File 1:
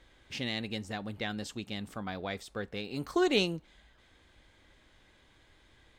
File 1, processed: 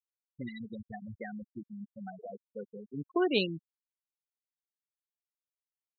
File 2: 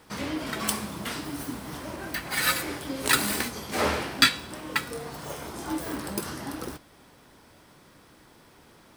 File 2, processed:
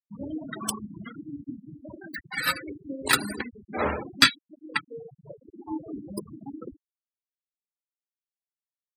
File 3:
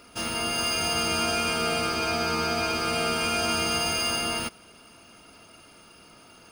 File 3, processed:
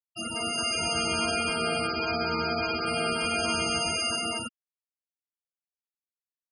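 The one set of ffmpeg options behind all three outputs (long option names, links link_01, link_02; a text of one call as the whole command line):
ffmpeg -i in.wav -af "aeval=exprs='0.708*(cos(1*acos(clip(val(0)/0.708,-1,1)))-cos(1*PI/2))+0.0178*(cos(3*acos(clip(val(0)/0.708,-1,1)))-cos(3*PI/2))+0.00891*(cos(5*acos(clip(val(0)/0.708,-1,1)))-cos(5*PI/2))+0.0355*(cos(7*acos(clip(val(0)/0.708,-1,1)))-cos(7*PI/2))':channel_layout=same,afftfilt=real='re*gte(hypot(re,im),0.0447)':imag='im*gte(hypot(re,im),0.0447)':win_size=1024:overlap=0.75,volume=2.5dB" out.wav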